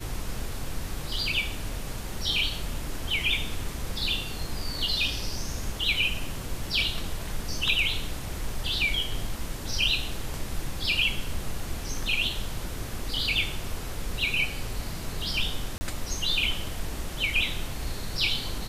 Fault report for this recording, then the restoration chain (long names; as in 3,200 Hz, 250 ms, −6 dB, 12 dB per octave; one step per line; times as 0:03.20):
0:15.78–0:15.81: drop-out 30 ms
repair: repair the gap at 0:15.78, 30 ms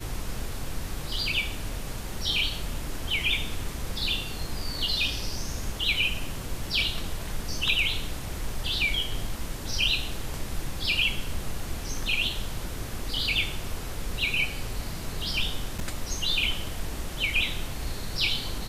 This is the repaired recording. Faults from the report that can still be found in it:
none of them is left